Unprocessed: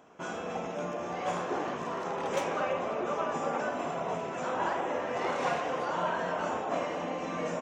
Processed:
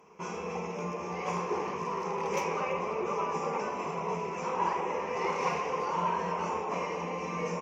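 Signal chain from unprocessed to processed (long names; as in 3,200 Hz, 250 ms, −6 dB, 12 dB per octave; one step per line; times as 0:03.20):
EQ curve with evenly spaced ripples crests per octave 0.81, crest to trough 13 dB
level −2 dB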